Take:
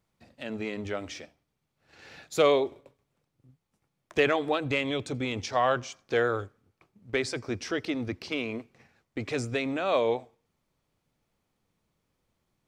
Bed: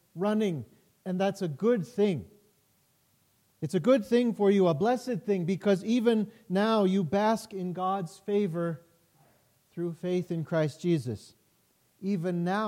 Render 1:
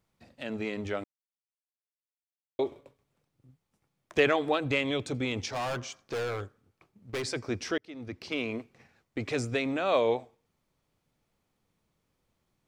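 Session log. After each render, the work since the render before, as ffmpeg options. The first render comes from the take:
ffmpeg -i in.wav -filter_complex "[0:a]asettb=1/sr,asplit=3[link_01][link_02][link_03];[link_01]atrim=end=5.494[link_04];[link_02]atrim=start=5.49:end=7.24,asetpts=PTS-STARTPTS,afade=type=in:duration=0.004:curve=qsin,afade=type=out:start_time=1.746:duration=0.004:curve=qsin,volume=30dB,asoftclip=hard,volume=-30dB[link_05];[link_03]atrim=start=7.236[link_06];[link_04][link_05]acrossfade=duration=0.004:curve1=hsin:curve2=qsin[link_07];[link_07][link_06]acrossfade=duration=0.004:curve1=qsin:curve2=hsin,asplit=4[link_08][link_09][link_10][link_11];[link_08]atrim=end=1.04,asetpts=PTS-STARTPTS,afade=type=out:start_time=1.036:duration=0.004:curve=hsin[link_12];[link_09]atrim=start=1.04:end=2.59,asetpts=PTS-STARTPTS,volume=0[link_13];[link_10]atrim=start=2.59:end=7.78,asetpts=PTS-STARTPTS,afade=type=in:duration=0.004:curve=hsin,afade=type=out:start_time=5.186:duration=0.004:curve=hsin[link_14];[link_11]atrim=start=7.78,asetpts=PTS-STARTPTS,afade=type=in:duration=0.65[link_15];[link_12][link_13][link_14][link_15]concat=n=4:v=0:a=1" out.wav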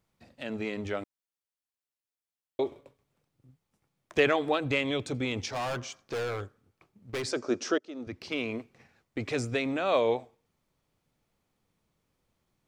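ffmpeg -i in.wav -filter_complex "[0:a]asettb=1/sr,asplit=3[link_01][link_02][link_03];[link_01]atrim=end=7.314[link_04];[link_02]atrim=start=7.31:end=8.07,asetpts=PTS-STARTPTS,afade=type=in:duration=0.004:curve=qsin,afade=type=out:start_time=0.756:duration=0.004:curve=qsin,highpass=230,equalizer=frequency=250:width_type=q:width=4:gain=5,equalizer=frequency=370:width_type=q:width=4:gain=6,equalizer=frequency=580:width_type=q:width=4:gain=7,equalizer=frequency=1300:width_type=q:width=4:gain=6,equalizer=frequency=2100:width_type=q:width=4:gain=-7,equalizer=frequency=6600:width_type=q:width=4:gain=7,lowpass=frequency=8900:width=0.5412,lowpass=frequency=8900:width=1.3066[link_05];[link_03]atrim=start=8.066[link_06];[link_04][link_05]acrossfade=duration=0.004:curve1=hsin:curve2=qsin[link_07];[link_07][link_06]acrossfade=duration=0.004:curve1=qsin:curve2=hsin" out.wav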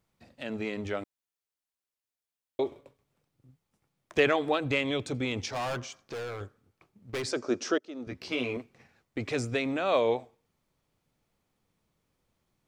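ffmpeg -i in.wav -filter_complex "[0:a]asettb=1/sr,asplit=3[link_01][link_02][link_03];[link_01]atrim=end=5.854[link_04];[link_02]atrim=start=5.85:end=6.41,asetpts=PTS-STARTPTS,afade=type=in:duration=0.004:curve=qsin,afade=type=out:start_time=0.556:duration=0.004:curve=qsin,acompressor=threshold=-39dB:ratio=2:attack=3.2:release=140:knee=1:detection=peak[link_05];[link_03]atrim=start=6.406[link_06];[link_04][link_05]acrossfade=duration=0.004:curve1=hsin:curve2=qsin[link_07];[link_07][link_06]acrossfade=duration=0.004:curve1=qsin:curve2=hsin,asettb=1/sr,asplit=3[link_08][link_09][link_10];[link_08]atrim=end=8.054[link_11];[link_09]atrim=start=8.05:end=8.57,asetpts=PTS-STARTPTS,afade=type=in:duration=0.004:curve=qsin,afade=type=out:start_time=0.516:duration=0.004:curve=qsin,asplit=2[link_12][link_13];[link_13]adelay=16,volume=-3.5dB[link_14];[link_12][link_14]amix=inputs=2:normalize=0,atrim=end_sample=22932[link_15];[link_10]atrim=start=8.566[link_16];[link_11][link_15]acrossfade=duration=0.004:curve1=hsin:curve2=qsin[link_17];[link_17][link_16]acrossfade=duration=0.004:curve1=qsin:curve2=hsin" out.wav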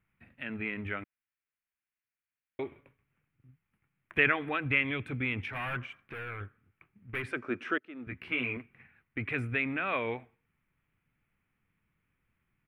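ffmpeg -i in.wav -af "firequalizer=gain_entry='entry(130,0);entry(560,-12);entry(1500,4);entry(2400,5);entry(4600,-27);entry(6800,-30);entry(10000,-8)':delay=0.05:min_phase=1" out.wav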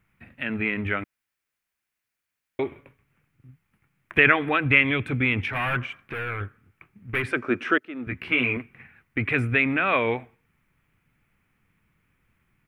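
ffmpeg -i in.wav -af "volume=9.5dB,alimiter=limit=-3dB:level=0:latency=1" out.wav

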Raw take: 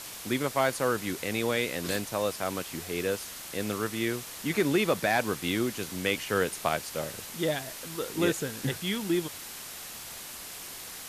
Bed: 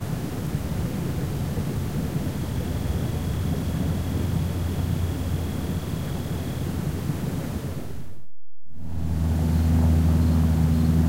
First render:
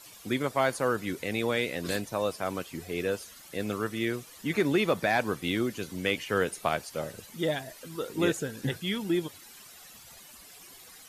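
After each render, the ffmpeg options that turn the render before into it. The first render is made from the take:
ffmpeg -i in.wav -af "afftdn=noise_reduction=13:noise_floor=-42" out.wav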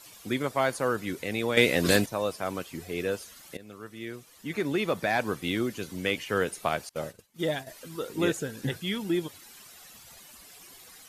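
ffmpeg -i in.wav -filter_complex "[0:a]asettb=1/sr,asplit=3[link_01][link_02][link_03];[link_01]atrim=end=6.894[link_04];[link_02]atrim=start=6.89:end=7.67,asetpts=PTS-STARTPTS,afade=type=in:duration=0.004:curve=qsin,afade=type=out:start_time=0.776:duration=0.004:curve=qsin,agate=range=-33dB:threshold=-37dB:ratio=3:release=100:detection=peak[link_05];[link_03]atrim=start=7.666[link_06];[link_04][link_05]acrossfade=duration=0.004:curve1=hsin:curve2=qsin[link_07];[link_07][link_06]acrossfade=duration=0.004:curve1=qsin:curve2=hsin,asplit=4[link_08][link_09][link_10][link_11];[link_08]atrim=end=1.572[link_12];[link_09]atrim=start=1.568:end=2.062,asetpts=PTS-STARTPTS,volume=9dB[link_13];[link_10]atrim=start=2.058:end=3.57,asetpts=PTS-STARTPTS,afade=type=out:start_time=1.508:duration=0.004:curve=hsin:silence=0.125893[link_14];[link_11]atrim=start=3.57,asetpts=PTS-STARTPTS,afade=type=in:duration=1.71:silence=0.125893[link_15];[link_12][link_13]acrossfade=duration=0.004:curve1=hsin:curve2=hsin[link_16];[link_14][link_15]concat=n=2:v=0:a=1[link_17];[link_16][link_17]acrossfade=duration=0.004:curve1=hsin:curve2=hsin" out.wav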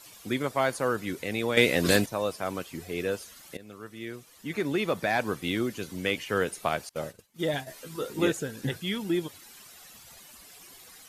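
ffmpeg -i in.wav -filter_complex "[0:a]asettb=1/sr,asplit=3[link_01][link_02][link_03];[link_01]atrim=end=7.524[link_04];[link_02]atrim=start=7.52:end=8.27,asetpts=PTS-STARTPTS,afade=type=in:duration=0.004:curve=qsin,afade=type=out:start_time=0.746:duration=0.004:curve=qsin,asplit=2[link_05][link_06];[link_06]adelay=14,volume=-4.5dB[link_07];[link_05][link_07]amix=inputs=2:normalize=0,atrim=end_sample=33075[link_08];[link_03]atrim=start=8.266[link_09];[link_04][link_08]acrossfade=duration=0.004:curve1=hsin:curve2=qsin[link_10];[link_10][link_09]acrossfade=duration=0.004:curve1=qsin:curve2=hsin" out.wav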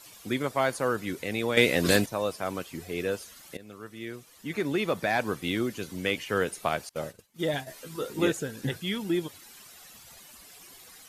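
ffmpeg -i in.wav -af anull out.wav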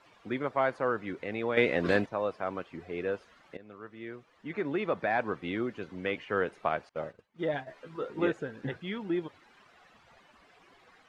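ffmpeg -i in.wav -af "lowpass=1800,lowshelf=frequency=280:gain=-8" out.wav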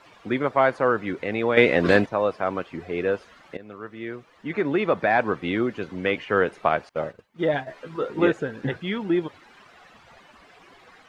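ffmpeg -i in.wav -af "volume=8.5dB" out.wav

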